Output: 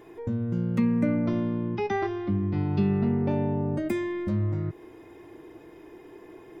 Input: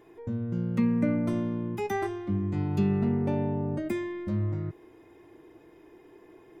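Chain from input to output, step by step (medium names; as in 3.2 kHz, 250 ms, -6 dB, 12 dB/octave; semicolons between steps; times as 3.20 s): 1.26–3.31 s: steep low-pass 5.6 kHz 72 dB/octave; in parallel at +2 dB: compression, threshold -35 dBFS, peak gain reduction 13.5 dB; on the sum: trim -1 dB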